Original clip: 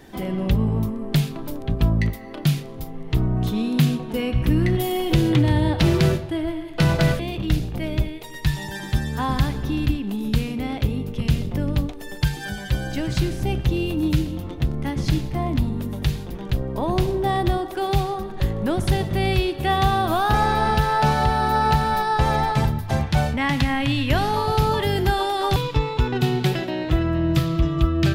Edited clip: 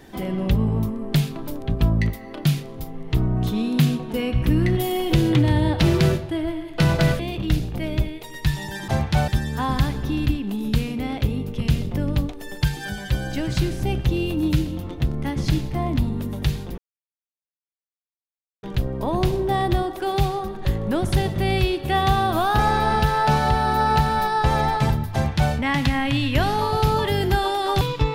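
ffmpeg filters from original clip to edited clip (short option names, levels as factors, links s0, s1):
-filter_complex "[0:a]asplit=4[s0][s1][s2][s3];[s0]atrim=end=8.882[s4];[s1]atrim=start=22.878:end=23.282[s5];[s2]atrim=start=8.878:end=16.38,asetpts=PTS-STARTPTS,afade=t=out:st=7.498:d=0.004:c=hsin,apad=pad_dur=1.85[s6];[s3]atrim=start=16.38,asetpts=PTS-STARTPTS,afade=t=in:d=0.004:c=hsin[s7];[s4][s5]acrossfade=d=0.004:c1=hsin:c2=hsin[s8];[s6][s7]concat=n=2:v=0:a=1[s9];[s8][s9]acrossfade=d=0.004:c1=hsin:c2=hsin"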